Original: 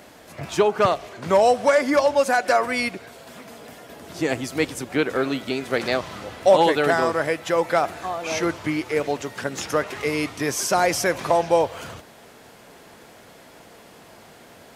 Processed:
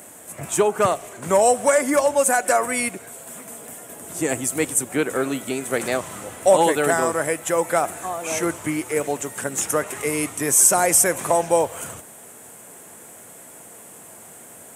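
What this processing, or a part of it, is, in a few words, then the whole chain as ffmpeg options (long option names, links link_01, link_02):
budget condenser microphone: -af "highpass=83,highshelf=frequency=6300:width_type=q:width=3:gain=11"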